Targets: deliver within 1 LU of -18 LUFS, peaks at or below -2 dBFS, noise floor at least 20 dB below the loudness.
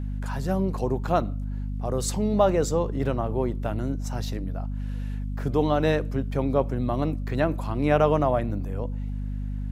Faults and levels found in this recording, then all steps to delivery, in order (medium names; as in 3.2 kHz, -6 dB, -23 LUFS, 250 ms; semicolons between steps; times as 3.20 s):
hum 50 Hz; highest harmonic 250 Hz; hum level -27 dBFS; loudness -26.5 LUFS; peak level -6.5 dBFS; loudness target -18.0 LUFS
-> hum notches 50/100/150/200/250 Hz; trim +8.5 dB; peak limiter -2 dBFS